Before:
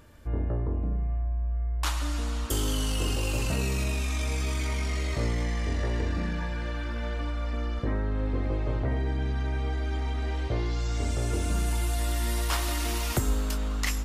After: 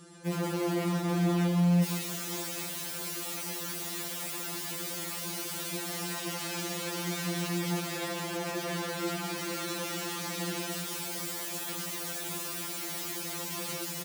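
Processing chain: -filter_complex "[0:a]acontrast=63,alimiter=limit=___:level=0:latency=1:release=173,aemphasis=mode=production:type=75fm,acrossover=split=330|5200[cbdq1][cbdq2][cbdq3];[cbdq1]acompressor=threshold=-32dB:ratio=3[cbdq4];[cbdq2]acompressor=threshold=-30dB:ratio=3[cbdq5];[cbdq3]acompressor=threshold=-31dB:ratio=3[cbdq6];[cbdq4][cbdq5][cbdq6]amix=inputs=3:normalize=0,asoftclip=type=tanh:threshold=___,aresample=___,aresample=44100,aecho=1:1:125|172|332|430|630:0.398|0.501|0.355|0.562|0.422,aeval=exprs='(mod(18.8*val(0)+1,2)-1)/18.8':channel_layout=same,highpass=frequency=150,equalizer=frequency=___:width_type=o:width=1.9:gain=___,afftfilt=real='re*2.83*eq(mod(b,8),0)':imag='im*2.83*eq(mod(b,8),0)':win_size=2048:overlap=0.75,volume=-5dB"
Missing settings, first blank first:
-13.5dB, -11dB, 22050, 230, 13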